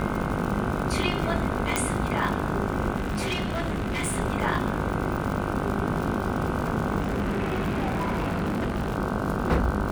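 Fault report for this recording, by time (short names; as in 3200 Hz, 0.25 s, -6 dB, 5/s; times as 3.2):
buzz 50 Hz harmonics 31 -31 dBFS
crackle 140/s -30 dBFS
1.76 pop -7 dBFS
2.96–4.18 clipped -23.5 dBFS
6.99–8.96 clipped -22 dBFS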